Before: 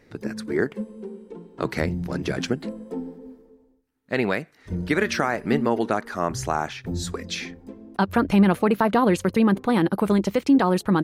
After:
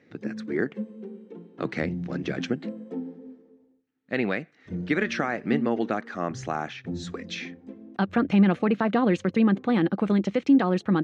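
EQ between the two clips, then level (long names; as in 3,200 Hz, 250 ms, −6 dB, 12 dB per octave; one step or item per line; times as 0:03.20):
loudspeaker in its box 160–6,400 Hz, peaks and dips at 410 Hz −5 dB, 620 Hz −4 dB, 960 Hz −10 dB, 1,400 Hz −3 dB, 4,800 Hz −6 dB
high-shelf EQ 4,500 Hz −9 dB
0.0 dB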